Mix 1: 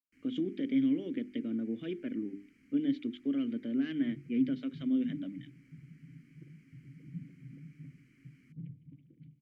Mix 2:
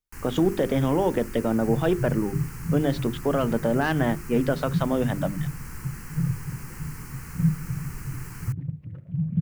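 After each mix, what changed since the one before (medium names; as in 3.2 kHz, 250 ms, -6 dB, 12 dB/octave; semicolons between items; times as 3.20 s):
first sound +8.5 dB; second sound: entry -2.40 s; master: remove vowel filter i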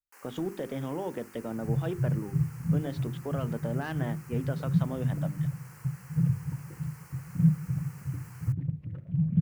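speech -11.5 dB; first sound: add ladder high-pass 500 Hz, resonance 55%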